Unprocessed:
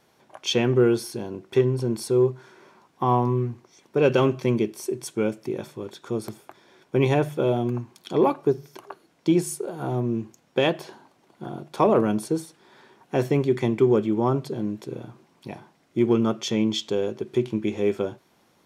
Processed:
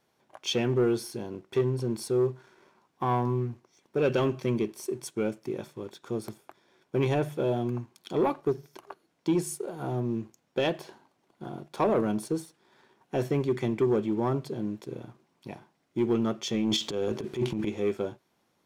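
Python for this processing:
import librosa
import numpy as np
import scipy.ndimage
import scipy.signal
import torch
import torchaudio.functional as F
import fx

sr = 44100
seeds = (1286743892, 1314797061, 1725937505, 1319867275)

y = fx.transient(x, sr, attack_db=-9, sustain_db=11, at=(16.54, 17.67))
y = fx.leveller(y, sr, passes=1)
y = F.gain(torch.from_numpy(y), -8.0).numpy()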